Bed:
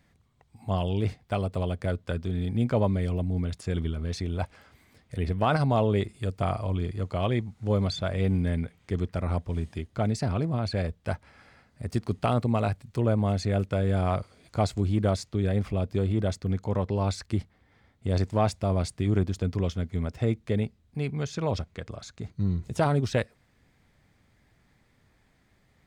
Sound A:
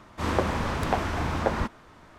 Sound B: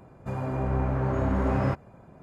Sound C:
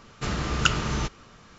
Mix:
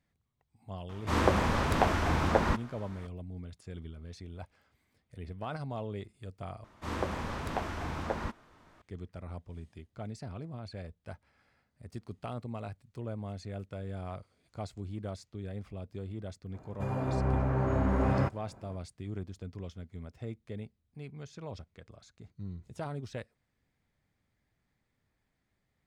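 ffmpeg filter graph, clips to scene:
-filter_complex "[1:a]asplit=2[a][b];[0:a]volume=-14.5dB,asplit=2[c][d];[c]atrim=end=6.644[e];[b]atrim=end=2.18,asetpts=PTS-STARTPTS,volume=-8.5dB[f];[d]atrim=start=8.816[g];[a]atrim=end=2.18,asetpts=PTS-STARTPTS,volume=-0.5dB,afade=t=in:d=0.004:c=hsin,afade=t=out:st=2.176:d=0.004:c=hsin,adelay=890[h];[2:a]atrim=end=2.22,asetpts=PTS-STARTPTS,volume=-2.5dB,afade=t=in:d=0.004:c=hsin,afade=t=out:st=2.216:d=0.004:c=hsin,adelay=16540[i];[e][f]acrossfade=d=0.004:c1=hsin:c2=hsin[j];[j][g]acrossfade=d=0.004:c1=hsin:c2=hsin[k];[k][h][i]amix=inputs=3:normalize=0"

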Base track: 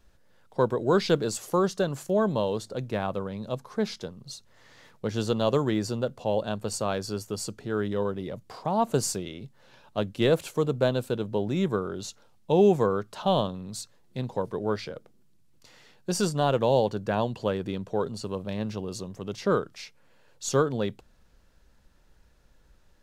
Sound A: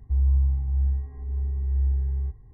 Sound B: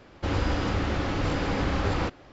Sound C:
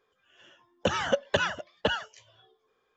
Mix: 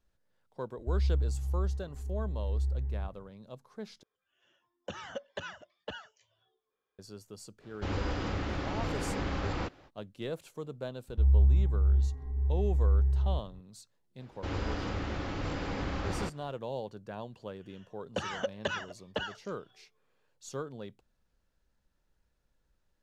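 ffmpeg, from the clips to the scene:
-filter_complex "[1:a]asplit=2[a][b];[3:a]asplit=2[c][d];[2:a]asplit=2[e][f];[0:a]volume=-15dB[g];[e]acontrast=71[h];[g]asplit=2[i][j];[i]atrim=end=4.034[k];[c]atrim=end=2.96,asetpts=PTS-STARTPTS,volume=-14.5dB[l];[j]atrim=start=6.986[m];[a]atrim=end=2.53,asetpts=PTS-STARTPTS,volume=-7.5dB,afade=t=in:d=0.004:c=hsin,afade=t=out:st=2.526:d=0.004:c=hsin,adelay=770[n];[h]atrim=end=2.32,asetpts=PTS-STARTPTS,volume=-13.5dB,afade=t=in:d=0.05,afade=t=out:st=2.27:d=0.05,adelay=7590[o];[b]atrim=end=2.53,asetpts=PTS-STARTPTS,volume=-1.5dB,afade=t=in:d=0.004:c=hsin,afade=t=out:st=2.526:d=0.004:c=hsin,adelay=11080[p];[f]atrim=end=2.32,asetpts=PTS-STARTPTS,volume=-8dB,afade=t=in:d=0.004:c=hsin,afade=t=out:st=2.316:d=0.004:c=hsin,adelay=14200[q];[d]atrim=end=2.96,asetpts=PTS-STARTPTS,volume=-8dB,afade=t=in:d=0.004:c=hsin,afade=t=out:st=2.956:d=0.004:c=hsin,adelay=17310[r];[k][l]acrossfade=d=0.004:c1=hsin:c2=hsin[s];[s][m]acrossfade=d=0.004:c1=hsin:c2=hsin[t];[t][n][o][p][q][r]amix=inputs=6:normalize=0"

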